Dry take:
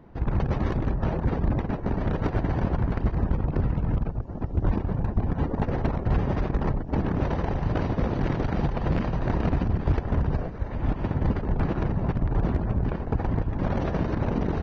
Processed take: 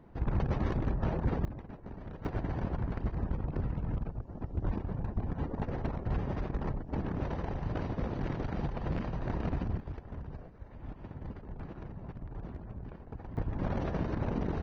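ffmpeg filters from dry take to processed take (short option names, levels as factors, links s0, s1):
-af "asetnsamples=n=441:p=0,asendcmd='1.45 volume volume -18dB;2.25 volume volume -9dB;9.8 volume volume -18dB;13.37 volume volume -7dB',volume=0.531"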